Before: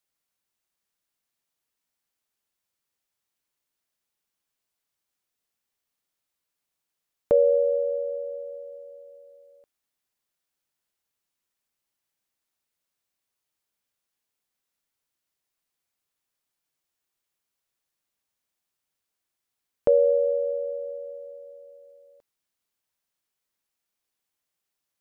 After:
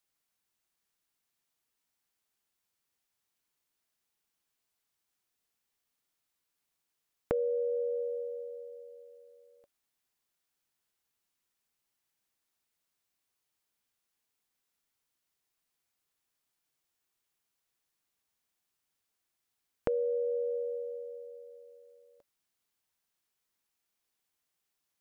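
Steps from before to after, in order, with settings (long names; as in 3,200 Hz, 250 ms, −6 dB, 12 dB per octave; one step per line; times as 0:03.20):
notch filter 570 Hz, Q 12
downward compressor 5 to 1, threshold −29 dBFS, peak gain reduction 9.5 dB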